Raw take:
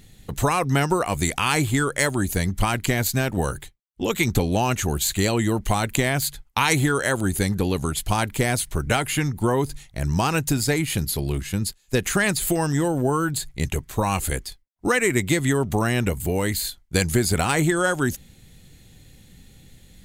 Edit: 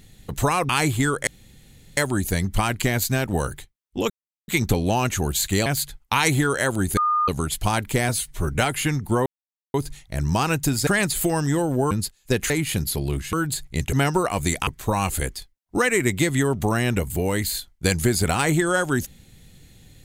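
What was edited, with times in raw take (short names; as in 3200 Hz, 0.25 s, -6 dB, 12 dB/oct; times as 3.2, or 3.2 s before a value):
0.69–1.43 move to 13.77
2.01 insert room tone 0.70 s
4.14 insert silence 0.38 s
5.32–6.11 cut
7.42–7.73 bleep 1220 Hz -17.5 dBFS
8.54–8.8 stretch 1.5×
9.58 insert silence 0.48 s
10.71–11.54 swap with 12.13–13.17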